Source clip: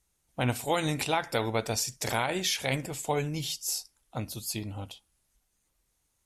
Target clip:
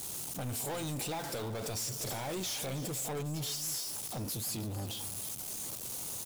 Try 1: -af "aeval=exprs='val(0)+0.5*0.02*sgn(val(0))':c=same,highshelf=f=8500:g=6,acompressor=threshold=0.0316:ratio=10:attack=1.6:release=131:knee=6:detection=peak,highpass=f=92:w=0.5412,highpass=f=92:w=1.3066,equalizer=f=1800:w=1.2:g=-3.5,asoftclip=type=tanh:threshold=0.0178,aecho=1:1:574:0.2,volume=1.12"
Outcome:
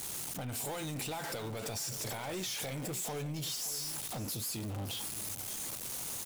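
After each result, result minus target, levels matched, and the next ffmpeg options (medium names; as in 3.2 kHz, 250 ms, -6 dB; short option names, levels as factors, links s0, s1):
echo 258 ms late; compression: peak gain reduction +6 dB; 2 kHz band +2.5 dB
-af "aeval=exprs='val(0)+0.5*0.02*sgn(val(0))':c=same,highshelf=f=8500:g=6,acompressor=threshold=0.0316:ratio=10:attack=1.6:release=131:knee=6:detection=peak,highpass=f=92:w=0.5412,highpass=f=92:w=1.3066,equalizer=f=1800:w=1.2:g=-3.5,asoftclip=type=tanh:threshold=0.0178,aecho=1:1:316:0.2,volume=1.12"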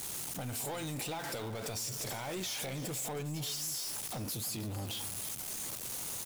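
compression: peak gain reduction +6 dB; 2 kHz band +2.5 dB
-af "aeval=exprs='val(0)+0.5*0.02*sgn(val(0))':c=same,highshelf=f=8500:g=6,acompressor=threshold=0.0708:ratio=10:attack=1.6:release=131:knee=6:detection=peak,highpass=f=92:w=0.5412,highpass=f=92:w=1.3066,equalizer=f=1800:w=1.2:g=-3.5,asoftclip=type=tanh:threshold=0.0178,aecho=1:1:316:0.2,volume=1.12"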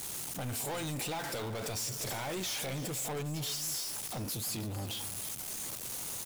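2 kHz band +3.5 dB
-af "aeval=exprs='val(0)+0.5*0.02*sgn(val(0))':c=same,highshelf=f=8500:g=6,acompressor=threshold=0.0708:ratio=10:attack=1.6:release=131:knee=6:detection=peak,highpass=f=92:w=0.5412,highpass=f=92:w=1.3066,equalizer=f=1800:w=1.2:g=-11,asoftclip=type=tanh:threshold=0.0178,aecho=1:1:316:0.2,volume=1.12"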